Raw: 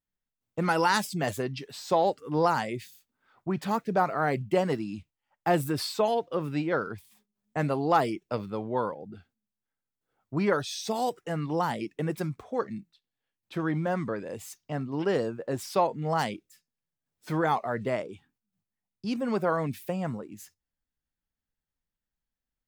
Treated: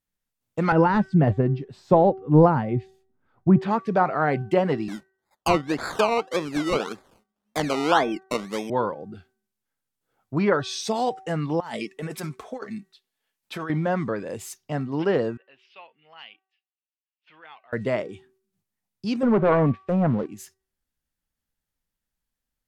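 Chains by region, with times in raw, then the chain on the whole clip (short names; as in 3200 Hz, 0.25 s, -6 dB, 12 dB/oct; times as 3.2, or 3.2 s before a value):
0.72–3.61 tilt -4.5 dB/oct + upward expander, over -32 dBFS
4.88–8.7 HPF 190 Hz 24 dB/oct + treble ducked by the level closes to 2100 Hz, closed at -22 dBFS + decimation with a swept rate 21×, swing 60% 1.8 Hz
11.6–13.7 low shelf 310 Hz -11 dB + comb 4.6 ms, depth 34% + negative-ratio compressor -37 dBFS
15.37–17.73 band-pass 2800 Hz, Q 6.2 + air absorption 270 m
19.23–20.26 Bessel low-pass 1100 Hz + sample leveller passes 2 + transient shaper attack -5 dB, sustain +1 dB
whole clip: de-hum 381.5 Hz, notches 5; treble ducked by the level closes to 2700 Hz, closed at -21.5 dBFS; high shelf 9800 Hz +5.5 dB; gain +4.5 dB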